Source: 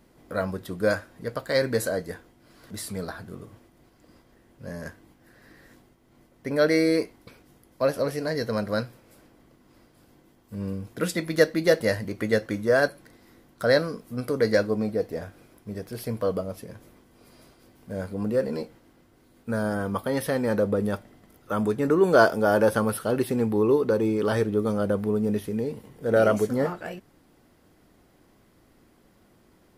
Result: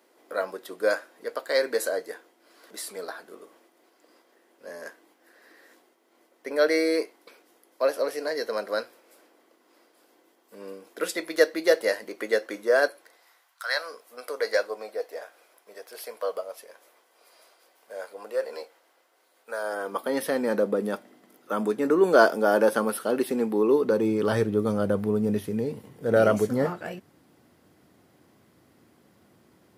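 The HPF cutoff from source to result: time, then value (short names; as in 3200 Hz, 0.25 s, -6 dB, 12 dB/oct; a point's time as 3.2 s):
HPF 24 dB/oct
12.87 s 350 Hz
13.65 s 1100 Hz
13.92 s 520 Hz
19.58 s 520 Hz
20.19 s 220 Hz
23.65 s 220 Hz
24.33 s 85 Hz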